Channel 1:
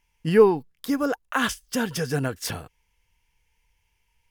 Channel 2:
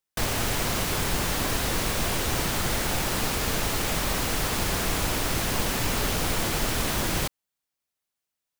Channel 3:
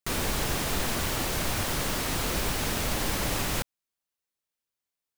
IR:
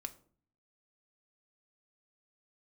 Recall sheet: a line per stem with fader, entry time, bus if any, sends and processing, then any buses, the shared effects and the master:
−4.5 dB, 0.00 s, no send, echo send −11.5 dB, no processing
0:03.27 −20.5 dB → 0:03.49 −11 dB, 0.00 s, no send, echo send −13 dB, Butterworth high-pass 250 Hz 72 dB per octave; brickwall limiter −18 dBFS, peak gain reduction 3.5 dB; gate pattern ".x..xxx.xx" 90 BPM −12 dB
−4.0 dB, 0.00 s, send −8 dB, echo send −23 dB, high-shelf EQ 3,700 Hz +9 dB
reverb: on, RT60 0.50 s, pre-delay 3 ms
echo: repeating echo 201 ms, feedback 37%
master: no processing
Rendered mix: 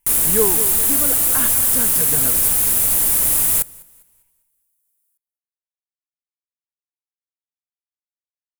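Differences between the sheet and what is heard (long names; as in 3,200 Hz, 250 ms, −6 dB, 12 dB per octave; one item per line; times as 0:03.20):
stem 2: muted
master: extra high shelf with overshoot 7,300 Hz +13 dB, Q 1.5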